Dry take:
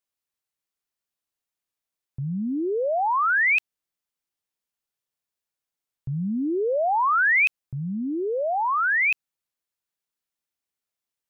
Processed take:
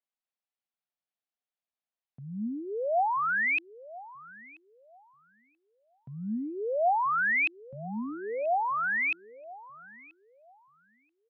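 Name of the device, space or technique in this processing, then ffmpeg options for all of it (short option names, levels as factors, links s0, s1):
kitchen radio: -filter_complex "[0:a]highpass=210,equalizer=f=220:t=q:w=4:g=6,equalizer=f=350:t=q:w=4:g=-7,equalizer=f=720:t=q:w=4:g=7,lowpass=f=4200:w=0.5412,lowpass=f=4200:w=1.3066,asplit=2[s0][s1];[s1]adelay=983,lowpass=f=960:p=1,volume=0.158,asplit=2[s2][s3];[s3]adelay=983,lowpass=f=960:p=1,volume=0.28,asplit=2[s4][s5];[s5]adelay=983,lowpass=f=960:p=1,volume=0.28[s6];[s0][s2][s4][s6]amix=inputs=4:normalize=0,volume=0.447"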